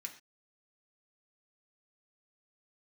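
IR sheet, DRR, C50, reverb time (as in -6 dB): 1.0 dB, 11.0 dB, no single decay rate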